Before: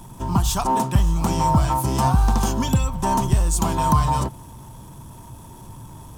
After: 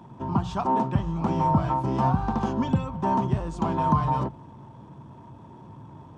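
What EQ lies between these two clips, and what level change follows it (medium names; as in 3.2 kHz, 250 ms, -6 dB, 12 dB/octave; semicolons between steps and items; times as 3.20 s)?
high-pass 130 Hz 12 dB/octave; tape spacing loss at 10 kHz 36 dB; hum notches 60/120/180 Hz; 0.0 dB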